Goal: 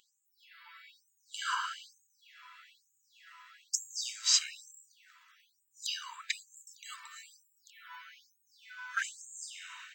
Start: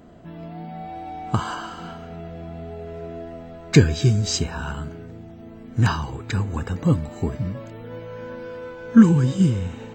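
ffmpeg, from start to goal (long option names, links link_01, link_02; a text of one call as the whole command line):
ffmpeg -i in.wav -af "asoftclip=type=hard:threshold=-3.5dB,afftfilt=real='re*gte(b*sr/1024,900*pow(6600/900,0.5+0.5*sin(2*PI*1.1*pts/sr)))':imag='im*gte(b*sr/1024,900*pow(6600/900,0.5+0.5*sin(2*PI*1.1*pts/sr)))':win_size=1024:overlap=0.75" out.wav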